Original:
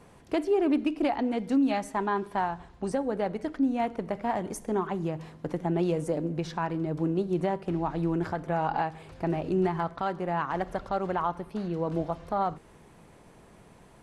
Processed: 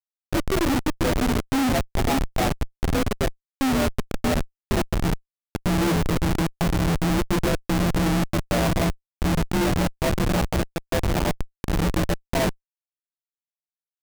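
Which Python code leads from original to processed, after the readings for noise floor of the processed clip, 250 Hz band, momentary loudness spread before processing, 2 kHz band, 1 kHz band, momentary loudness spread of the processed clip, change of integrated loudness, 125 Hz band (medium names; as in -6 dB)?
under -85 dBFS, +5.0 dB, 6 LU, +9.5 dB, +1.0 dB, 6 LU, +5.5 dB, +10.0 dB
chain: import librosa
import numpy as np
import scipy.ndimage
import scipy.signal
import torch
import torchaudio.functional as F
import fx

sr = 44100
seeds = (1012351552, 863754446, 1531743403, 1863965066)

y = fx.partial_stretch(x, sr, pct=85)
y = fx.cheby_harmonics(y, sr, harmonics=(3, 4, 7, 8), levels_db=(-34, -40, -32, -23), full_scale_db=-16.5)
y = fx.doubler(y, sr, ms=12.0, db=-3)
y = fx.echo_diffused(y, sr, ms=551, feedback_pct=53, wet_db=-11)
y = fx.schmitt(y, sr, flips_db=-27.0)
y = y * 10.0 ** (8.5 / 20.0)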